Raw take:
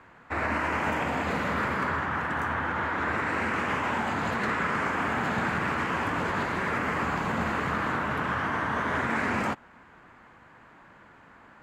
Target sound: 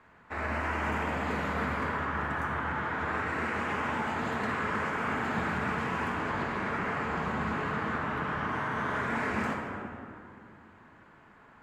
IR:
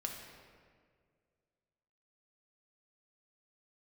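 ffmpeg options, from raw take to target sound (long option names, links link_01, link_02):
-filter_complex "[0:a]asettb=1/sr,asplit=3[link_01][link_02][link_03];[link_01]atrim=end=6.144[link_04];[link_02]atrim=start=6.14:end=8.49,asetpts=PTS-STARTPTS,afade=type=in:duration=0.004:curve=qsin,afade=type=out:start_time=2.346:duration=0.004:curve=qsin,highshelf=frequency=8800:gain=-9.5[link_05];[link_03]atrim=start=8.486[link_06];[link_04][link_05]acrossfade=duration=0.004:curve1=hsin:curve2=qsin[link_07];[link_07][link_06]acrossfade=duration=0.004:curve1=qsin:curve2=hsin[link_08];[1:a]atrim=start_sample=2205,asetrate=29988,aresample=44100[link_09];[link_08][link_09]afir=irnorm=-1:irlink=0,volume=-6dB"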